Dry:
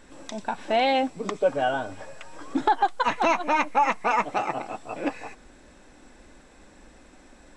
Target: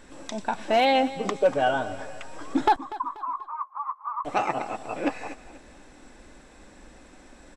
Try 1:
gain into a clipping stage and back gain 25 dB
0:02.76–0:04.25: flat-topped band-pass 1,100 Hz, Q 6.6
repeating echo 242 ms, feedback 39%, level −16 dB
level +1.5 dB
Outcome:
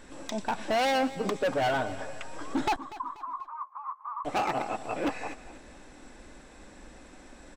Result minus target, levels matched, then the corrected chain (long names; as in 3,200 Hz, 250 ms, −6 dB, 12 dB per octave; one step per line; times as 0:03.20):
gain into a clipping stage and back: distortion +19 dB
gain into a clipping stage and back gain 14 dB
0:02.76–0:04.25: flat-topped band-pass 1,100 Hz, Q 6.6
repeating echo 242 ms, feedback 39%, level −16 dB
level +1.5 dB